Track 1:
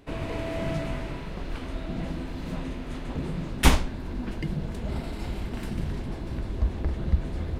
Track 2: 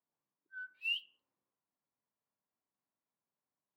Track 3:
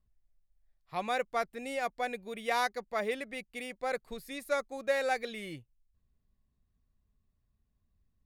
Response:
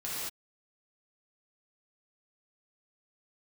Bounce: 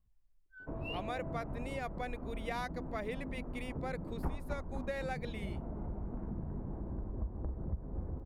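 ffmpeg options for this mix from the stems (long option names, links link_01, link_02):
-filter_complex "[0:a]lowpass=frequency=1100:width=0.5412,lowpass=frequency=1100:width=1.3066,adelay=600,volume=-7dB,asplit=2[link_01][link_02];[link_02]volume=-8dB[link_03];[1:a]volume=-7.5dB[link_04];[2:a]bass=frequency=250:gain=4,treble=frequency=4000:gain=-4,volume=-3dB[link_05];[link_03]aecho=0:1:253|506|759|1012|1265|1518|1771:1|0.49|0.24|0.118|0.0576|0.0282|0.0138[link_06];[link_01][link_04][link_05][link_06]amix=inputs=4:normalize=0,acompressor=threshold=-36dB:ratio=3"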